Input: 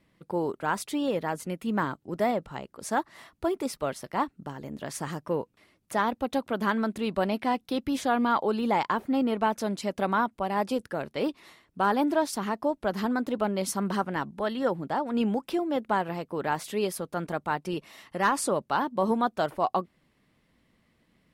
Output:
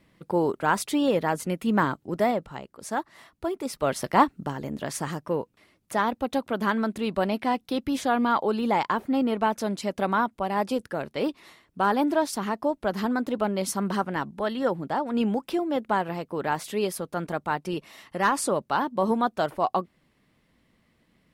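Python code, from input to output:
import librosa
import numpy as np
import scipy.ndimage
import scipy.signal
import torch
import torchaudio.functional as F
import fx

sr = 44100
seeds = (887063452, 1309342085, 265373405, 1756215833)

y = fx.gain(x, sr, db=fx.line((1.99, 5.0), (2.69, -1.5), (3.62, -1.5), (4.04, 10.0), (5.28, 1.5)))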